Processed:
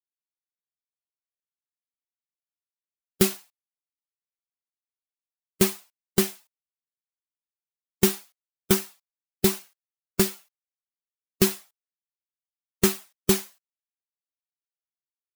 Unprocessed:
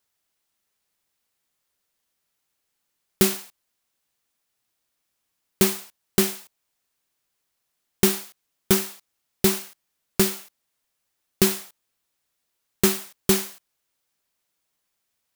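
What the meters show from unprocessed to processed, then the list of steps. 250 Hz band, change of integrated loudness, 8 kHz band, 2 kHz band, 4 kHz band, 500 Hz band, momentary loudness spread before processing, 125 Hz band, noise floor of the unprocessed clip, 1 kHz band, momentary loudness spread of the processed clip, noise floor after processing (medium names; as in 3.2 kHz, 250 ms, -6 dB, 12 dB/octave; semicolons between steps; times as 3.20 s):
-1.5 dB, -2.0 dB, -3.0 dB, -3.0 dB, -3.0 dB, -1.5 dB, 12 LU, -1.0 dB, -78 dBFS, -2.5 dB, 13 LU, under -85 dBFS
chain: expander on every frequency bin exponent 1.5; gate with hold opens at -60 dBFS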